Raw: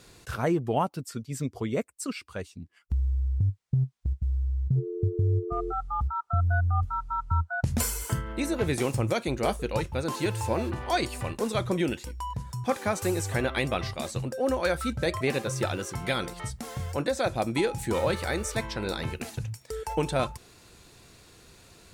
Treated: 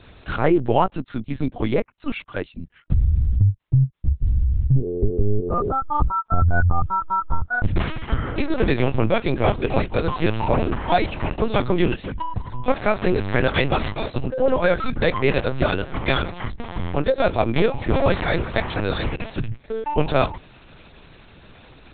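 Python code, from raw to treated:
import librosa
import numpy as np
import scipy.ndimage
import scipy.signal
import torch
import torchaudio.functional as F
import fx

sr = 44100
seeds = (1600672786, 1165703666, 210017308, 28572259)

y = fx.lpc_vocoder(x, sr, seeds[0], excitation='pitch_kept', order=8)
y = y * 10.0 ** (8.5 / 20.0)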